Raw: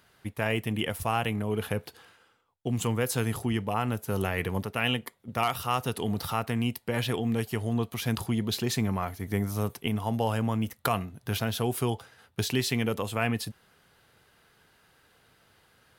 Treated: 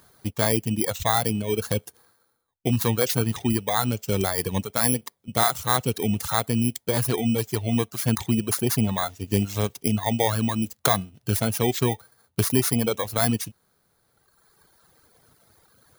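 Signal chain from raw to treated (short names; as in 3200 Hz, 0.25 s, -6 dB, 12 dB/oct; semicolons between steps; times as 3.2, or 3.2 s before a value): FFT order left unsorted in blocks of 16 samples; reverb removal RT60 1.8 s; gain +7 dB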